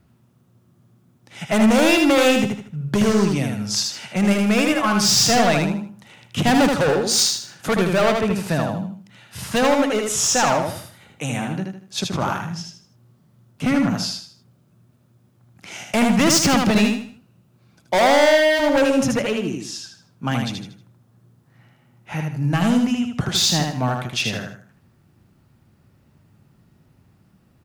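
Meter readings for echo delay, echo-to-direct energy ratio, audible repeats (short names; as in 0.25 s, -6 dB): 78 ms, -3.5 dB, 4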